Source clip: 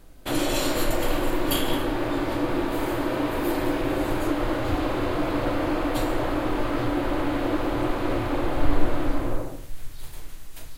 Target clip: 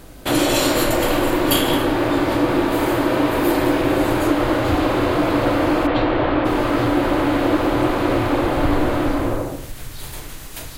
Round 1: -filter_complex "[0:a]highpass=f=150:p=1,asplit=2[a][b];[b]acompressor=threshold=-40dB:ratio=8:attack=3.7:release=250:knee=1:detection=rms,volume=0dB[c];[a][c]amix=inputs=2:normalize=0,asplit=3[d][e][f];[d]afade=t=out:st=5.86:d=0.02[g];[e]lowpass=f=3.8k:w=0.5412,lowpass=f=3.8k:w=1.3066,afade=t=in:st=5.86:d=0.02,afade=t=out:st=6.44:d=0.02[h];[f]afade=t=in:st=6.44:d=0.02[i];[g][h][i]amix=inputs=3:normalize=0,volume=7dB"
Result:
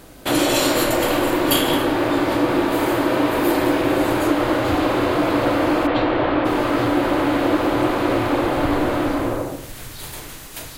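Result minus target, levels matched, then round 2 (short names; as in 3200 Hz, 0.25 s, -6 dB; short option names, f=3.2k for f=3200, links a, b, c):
125 Hz band -3.0 dB
-filter_complex "[0:a]highpass=f=55:p=1,asplit=2[a][b];[b]acompressor=threshold=-40dB:ratio=8:attack=3.7:release=250:knee=1:detection=rms,volume=0dB[c];[a][c]amix=inputs=2:normalize=0,asplit=3[d][e][f];[d]afade=t=out:st=5.86:d=0.02[g];[e]lowpass=f=3.8k:w=0.5412,lowpass=f=3.8k:w=1.3066,afade=t=in:st=5.86:d=0.02,afade=t=out:st=6.44:d=0.02[h];[f]afade=t=in:st=6.44:d=0.02[i];[g][h][i]amix=inputs=3:normalize=0,volume=7dB"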